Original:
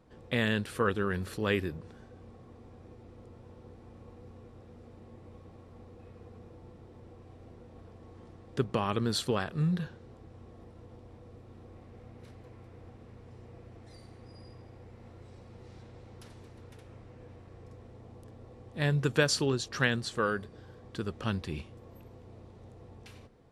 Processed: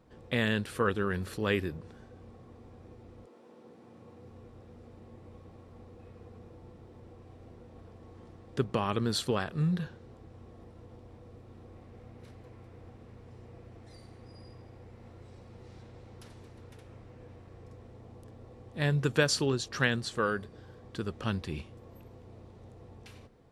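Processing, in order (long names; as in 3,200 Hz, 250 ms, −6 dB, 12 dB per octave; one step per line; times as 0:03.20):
0:03.25–0:04.30: high-pass filter 290 Hz → 81 Hz 24 dB per octave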